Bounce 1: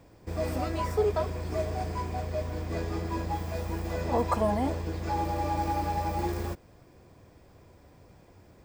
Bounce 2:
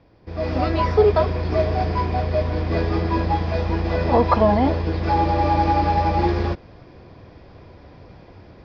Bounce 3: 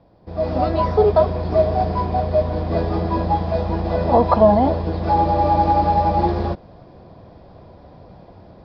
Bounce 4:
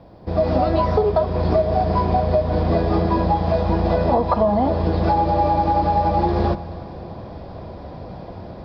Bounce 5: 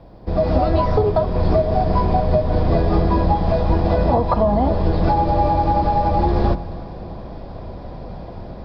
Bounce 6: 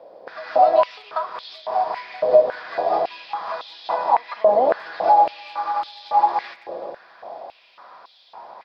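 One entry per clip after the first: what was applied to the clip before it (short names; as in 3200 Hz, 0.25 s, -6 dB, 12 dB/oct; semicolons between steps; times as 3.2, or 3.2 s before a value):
steep low-pass 5100 Hz 48 dB/oct; AGC gain up to 11 dB
EQ curve 110 Hz 0 dB, 190 Hz +5 dB, 290 Hz 0 dB, 450 Hz +1 dB, 660 Hz +7 dB, 2300 Hz -8 dB, 4000 Hz 0 dB, 6500 Hz -8 dB; gain -1 dB
compressor 10:1, threshold -23 dBFS, peak gain reduction 16 dB; reverb RT60 2.8 s, pre-delay 7 ms, DRR 13.5 dB; gain +8.5 dB
octaver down 2 oct, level +1 dB
speakerphone echo 0.38 s, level -16 dB; stepped high-pass 3.6 Hz 540–3500 Hz; gain -3.5 dB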